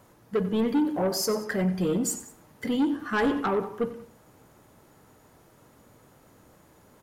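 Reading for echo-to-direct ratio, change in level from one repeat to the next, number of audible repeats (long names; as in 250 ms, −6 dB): −14.5 dB, −5.5 dB, 2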